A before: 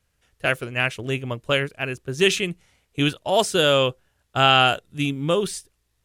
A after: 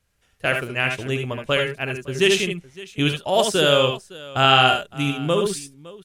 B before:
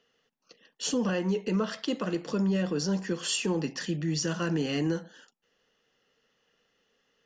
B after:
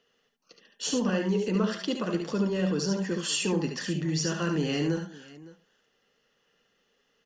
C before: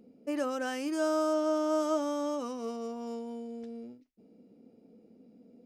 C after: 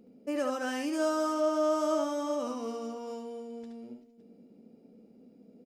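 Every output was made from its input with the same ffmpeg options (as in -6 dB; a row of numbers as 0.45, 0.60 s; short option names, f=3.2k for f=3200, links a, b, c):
-af "aecho=1:1:70|75|561:0.447|0.376|0.106"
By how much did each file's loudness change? +1.5, +1.0, +1.0 LU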